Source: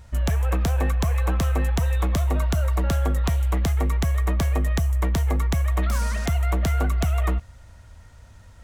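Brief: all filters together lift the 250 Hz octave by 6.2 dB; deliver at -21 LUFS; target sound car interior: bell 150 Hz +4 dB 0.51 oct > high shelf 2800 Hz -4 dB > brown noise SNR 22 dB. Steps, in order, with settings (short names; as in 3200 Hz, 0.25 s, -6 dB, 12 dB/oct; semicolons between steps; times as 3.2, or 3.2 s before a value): bell 150 Hz +4 dB 0.51 oct; bell 250 Hz +7 dB; high shelf 2800 Hz -4 dB; brown noise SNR 22 dB; gain +1.5 dB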